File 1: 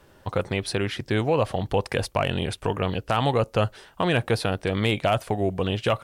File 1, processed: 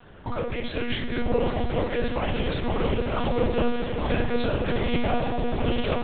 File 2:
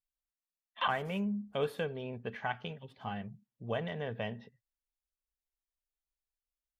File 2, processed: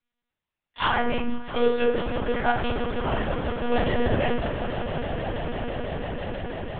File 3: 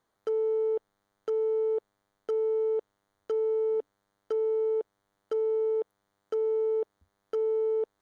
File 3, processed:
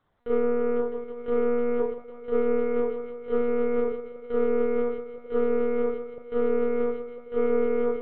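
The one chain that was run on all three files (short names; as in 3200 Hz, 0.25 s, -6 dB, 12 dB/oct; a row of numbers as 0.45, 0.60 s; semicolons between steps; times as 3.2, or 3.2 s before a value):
dynamic EQ 310 Hz, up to -3 dB, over -42 dBFS, Q 2.9; limiter -22.5 dBFS; soft clip -24.5 dBFS; on a send: swelling echo 0.165 s, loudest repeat 8, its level -14 dB; on the sum: FDN reverb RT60 0.78 s, low-frequency decay 1.25×, high-frequency decay 0.6×, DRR -3 dB; monotone LPC vocoder at 8 kHz 240 Hz; match loudness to -27 LUFS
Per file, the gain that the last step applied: +2.0, +8.5, +2.0 dB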